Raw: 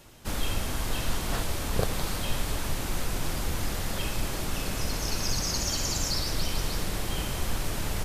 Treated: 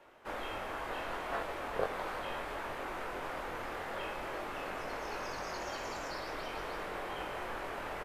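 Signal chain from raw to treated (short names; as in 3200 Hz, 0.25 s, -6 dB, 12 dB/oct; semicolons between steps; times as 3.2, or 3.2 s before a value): three-band isolator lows -22 dB, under 370 Hz, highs -23 dB, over 2300 Hz; doubler 22 ms -5.5 dB; gain -1 dB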